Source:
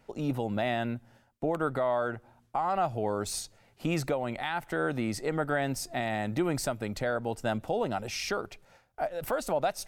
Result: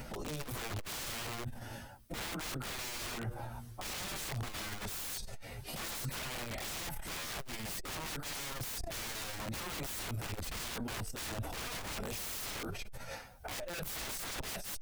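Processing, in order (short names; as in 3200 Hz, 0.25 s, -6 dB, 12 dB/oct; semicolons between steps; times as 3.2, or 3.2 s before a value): plain phase-vocoder stretch 1.5×; high shelf 5800 Hz +9.5 dB; notch 7100 Hz, Q 10; wrapped overs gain 34 dB; negative-ratio compressor -48 dBFS, ratio -1; limiter -42 dBFS, peak gain reduction 11.5 dB; low shelf 100 Hz +11 dB; core saturation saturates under 78 Hz; gain +8.5 dB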